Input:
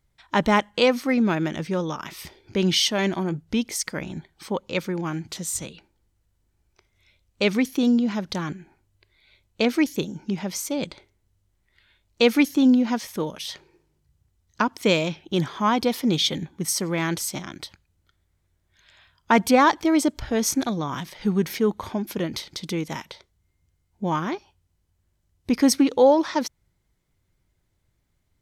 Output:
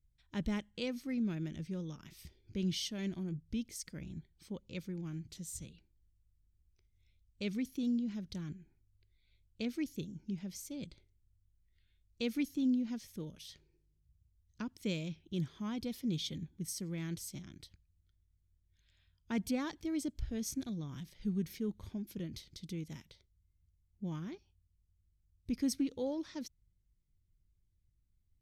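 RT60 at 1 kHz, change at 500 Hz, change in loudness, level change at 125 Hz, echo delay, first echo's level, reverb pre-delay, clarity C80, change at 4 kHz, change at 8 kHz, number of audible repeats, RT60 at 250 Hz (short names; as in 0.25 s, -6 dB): none, -21.0 dB, -16.0 dB, -10.5 dB, none, none, none, none, -18.5 dB, -16.5 dB, none, none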